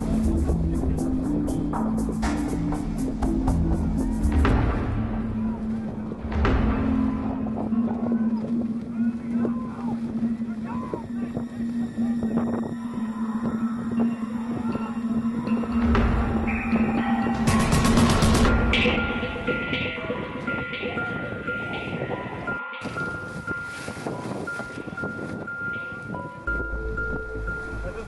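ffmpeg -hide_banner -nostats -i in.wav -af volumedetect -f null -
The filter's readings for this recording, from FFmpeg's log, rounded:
mean_volume: -24.9 dB
max_volume: -12.1 dB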